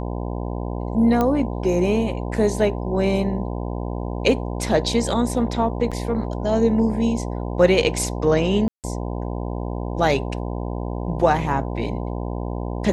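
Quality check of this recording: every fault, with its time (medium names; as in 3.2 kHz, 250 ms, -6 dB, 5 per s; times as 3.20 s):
buzz 60 Hz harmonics 17 -27 dBFS
1.21 s: pop -9 dBFS
5.91–5.92 s: dropout 6.4 ms
8.68–8.84 s: dropout 158 ms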